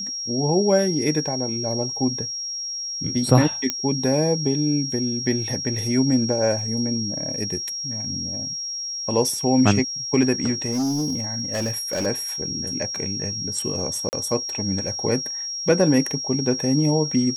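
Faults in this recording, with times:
whistle 5,600 Hz −27 dBFS
0:03.70: click −7 dBFS
0:10.71–0:12.07: clipping −20 dBFS
0:14.09–0:14.13: drop-out 39 ms

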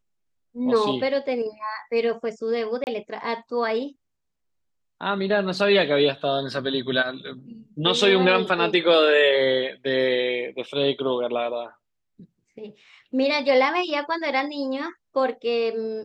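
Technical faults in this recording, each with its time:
0:02.84–0:02.87: drop-out 29 ms

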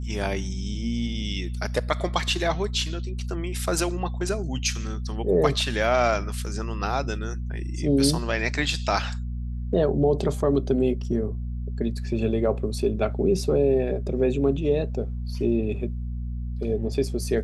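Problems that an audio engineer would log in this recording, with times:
mains hum 60 Hz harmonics 4 −30 dBFS

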